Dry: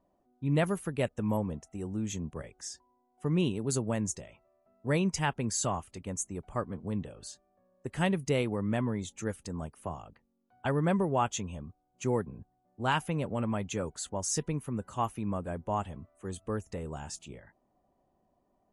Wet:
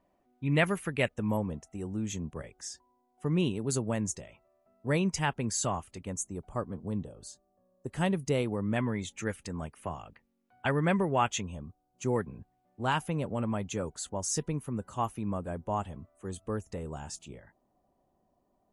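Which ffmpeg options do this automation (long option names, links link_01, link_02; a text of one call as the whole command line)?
ffmpeg -i in.wav -af "asetnsamples=nb_out_samples=441:pad=0,asendcmd='1.14 equalizer g 1;6.13 equalizer g -6.5;7 equalizer g -14.5;7.88 equalizer g -3;8.76 equalizer g 8;11.41 equalizer g -3;12.16 equalizer g 8;12.85 equalizer g -2',equalizer=frequency=2200:width_type=o:width=1.2:gain=10" out.wav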